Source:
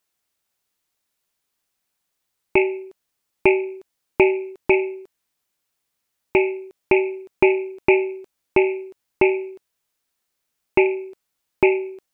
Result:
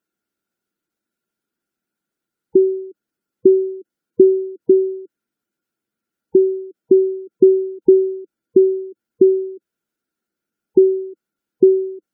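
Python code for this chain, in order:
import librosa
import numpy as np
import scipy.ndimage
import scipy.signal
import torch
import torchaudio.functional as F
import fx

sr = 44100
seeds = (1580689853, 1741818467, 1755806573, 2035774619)

y = fx.small_body(x, sr, hz=(220.0, 320.0, 1400.0), ring_ms=30, db=16)
y = fx.spec_gate(y, sr, threshold_db=-20, keep='strong')
y = F.gain(torch.from_numpy(y), -8.0).numpy()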